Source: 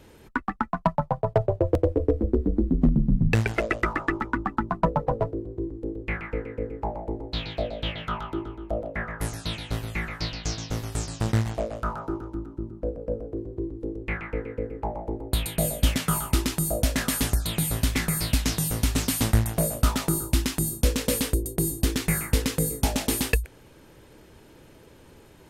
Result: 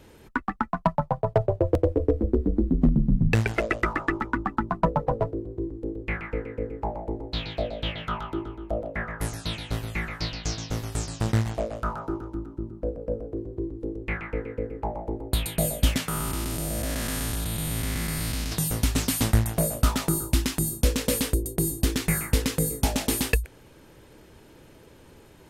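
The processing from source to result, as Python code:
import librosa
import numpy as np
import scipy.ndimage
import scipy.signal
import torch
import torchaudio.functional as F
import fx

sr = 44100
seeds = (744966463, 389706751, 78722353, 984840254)

y = fx.spec_blur(x, sr, span_ms=325.0, at=(16.08, 18.52))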